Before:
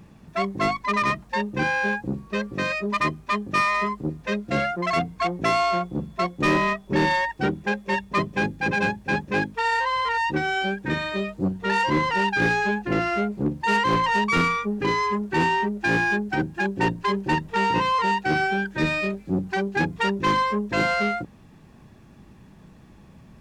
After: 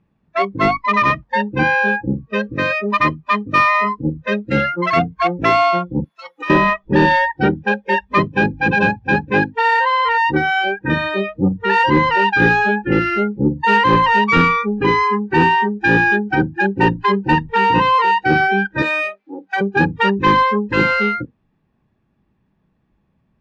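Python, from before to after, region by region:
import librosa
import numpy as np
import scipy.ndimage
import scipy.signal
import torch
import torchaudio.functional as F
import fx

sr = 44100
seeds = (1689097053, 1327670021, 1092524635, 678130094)

y = fx.chain(x, sr, fx.highpass(hz=960.0, slope=12),
    fx.over_compress(threshold_db=-31.0, ratio=-1.0), at=(6.04, 6.5))
y = fx.chain(y, sr, fx.bessel_highpass(hz=590.0, order=2),
    fx.high_shelf(hz=4500.0, db=5.5),
    fx.resample_linear(factor=4), at=(18.82, 19.61))
y = fx.noise_reduce_blind(y, sr, reduce_db=24)
y = scipy.signal.sosfilt(scipy.signal.butter(2, 3300.0, 'lowpass', fs=sr, output='sos'), y)
y = y * librosa.db_to_amplitude(8.5)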